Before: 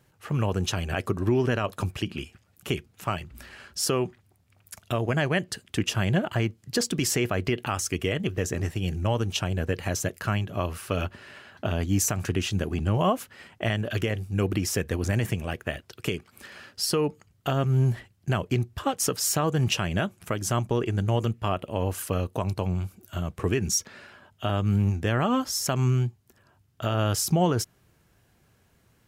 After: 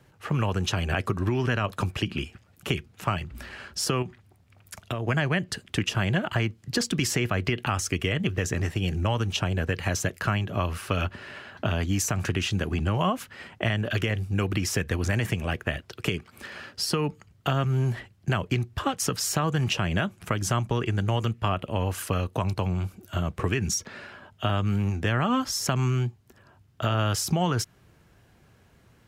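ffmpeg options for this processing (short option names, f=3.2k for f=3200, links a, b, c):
-filter_complex "[0:a]asettb=1/sr,asplit=3[a][b][c];[a]atrim=end=4.024[d];[b]atrim=start=4.02:end=5.07,asetpts=PTS-STARTPTS,afade=t=in:d=0.004:c=qsin,afade=t=out:st=1.046:d=0.004:c=qsin,acompressor=threshold=-33dB:ratio=2.5:attack=3.2:release=140:knee=1:detection=peak[e];[c]atrim=start=5.066[f];[d][e]acrossfade=d=0.004:c1=hsin:c2=qsin[g];[g][f]acrossfade=d=0.004:c1=qsin:c2=hsin,highshelf=f=6.3k:g=-9,acrossover=split=230|930[h][i][j];[h]acompressor=threshold=-31dB:ratio=4[k];[i]acompressor=threshold=-38dB:ratio=4[l];[j]acompressor=threshold=-31dB:ratio=4[m];[k][l][m]amix=inputs=3:normalize=0,volume=5.5dB"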